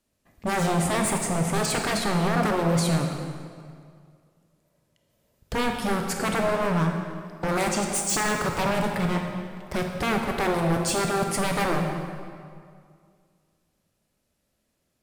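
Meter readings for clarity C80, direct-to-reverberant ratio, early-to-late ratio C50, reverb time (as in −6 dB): 5.0 dB, 2.5 dB, 3.5 dB, 2.2 s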